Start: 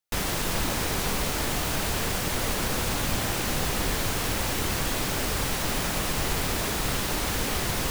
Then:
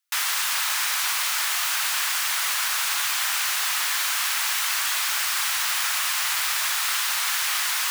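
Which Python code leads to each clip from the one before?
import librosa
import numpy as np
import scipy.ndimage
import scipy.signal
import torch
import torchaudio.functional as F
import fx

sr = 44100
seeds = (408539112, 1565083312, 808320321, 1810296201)

y = scipy.signal.sosfilt(scipy.signal.butter(4, 1100.0, 'highpass', fs=sr, output='sos'), x)
y = y * librosa.db_to_amplitude(6.5)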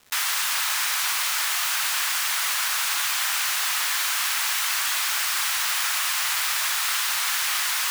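y = fx.dmg_crackle(x, sr, seeds[0], per_s=400.0, level_db=-39.0)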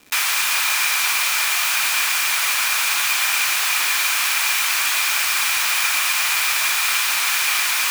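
y = fx.small_body(x, sr, hz=(280.0, 2400.0), ring_ms=25, db=12)
y = y * librosa.db_to_amplitude(4.0)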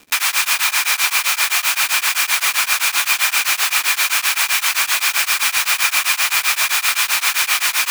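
y = x * np.abs(np.cos(np.pi * 7.7 * np.arange(len(x)) / sr))
y = y * librosa.db_to_amplitude(5.0)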